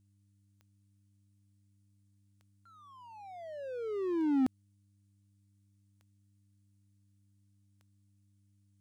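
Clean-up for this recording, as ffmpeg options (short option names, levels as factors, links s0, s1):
-af "adeclick=t=4,bandreject=f=99.8:t=h:w=4,bandreject=f=199.6:t=h:w=4,bandreject=f=299.4:t=h:w=4,agate=range=0.0891:threshold=0.000891"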